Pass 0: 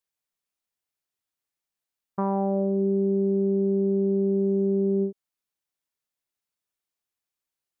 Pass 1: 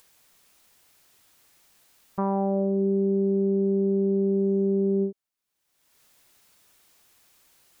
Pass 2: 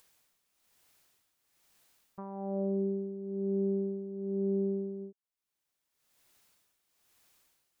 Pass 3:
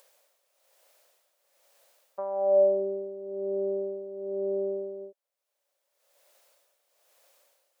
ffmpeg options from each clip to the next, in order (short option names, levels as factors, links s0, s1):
-af "acompressor=mode=upward:threshold=0.0112:ratio=2.5"
-af "tremolo=f=1.1:d=0.72,volume=0.473"
-af "highpass=f=560:t=q:w=7,volume=1.41"